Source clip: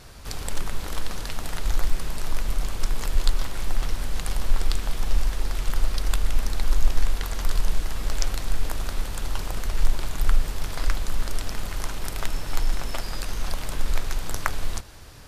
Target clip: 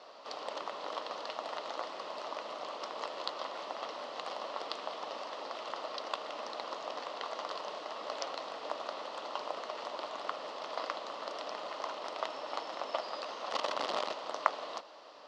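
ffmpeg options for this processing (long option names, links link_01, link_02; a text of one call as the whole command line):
ffmpeg -i in.wav -filter_complex "[0:a]asettb=1/sr,asplit=3[link_01][link_02][link_03];[link_01]atrim=end=13.504[link_04];[link_02]atrim=start=13.5:end=14.12,asetpts=PTS-STARTPTS,afade=type=in:duration=0.004:curve=qsin,afade=type=out:start_time=0.616:duration=0.004:curve=qsin,aeval=exprs='(mod(13.3*val(0)+1,2)-1)/13.3':channel_layout=same[link_05];[link_03]atrim=start=14.116[link_06];[link_04][link_05]acrossfade=duration=0.004:curve1=hsin:curve2=qsin[link_07];[link_07][link_06]acrossfade=duration=0.004:curve1=qsin:curve2=hsin,highpass=frequency=360:width=0.5412,highpass=frequency=360:width=1.3066,equalizer=frequency=380:width_type=q:width=4:gain=-7,equalizer=frequency=610:width_type=q:width=4:gain=7,equalizer=frequency=1100:width_type=q:width=4:gain=5,equalizer=frequency=1600:width_type=q:width=4:gain=-10,equalizer=frequency=2300:width_type=q:width=4:gain=-9,equalizer=frequency=3600:width_type=q:width=4:gain=-4,lowpass=frequency=4200:width=0.5412,lowpass=frequency=4200:width=1.3066,volume=-1dB" out.wav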